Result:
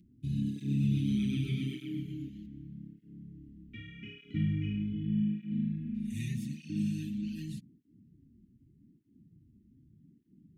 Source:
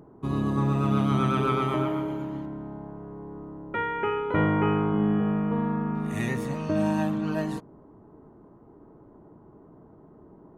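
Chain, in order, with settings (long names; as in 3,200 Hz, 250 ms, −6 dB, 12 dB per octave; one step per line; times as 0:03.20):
inverse Chebyshev band-stop filter 540–1,200 Hz, stop band 60 dB
0:00.56–0:02.28: parametric band 600 Hz +11 dB 1.7 octaves
through-zero flanger with one copy inverted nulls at 0.83 Hz, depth 7.4 ms
level −2.5 dB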